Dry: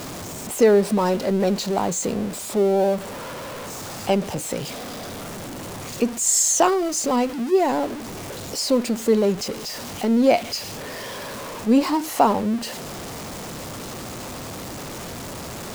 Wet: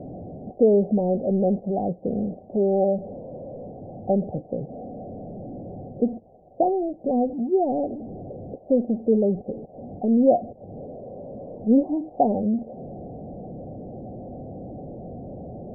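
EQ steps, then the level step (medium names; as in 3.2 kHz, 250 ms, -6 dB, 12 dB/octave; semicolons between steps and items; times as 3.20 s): rippled Chebyshev low-pass 770 Hz, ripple 3 dB; 0.0 dB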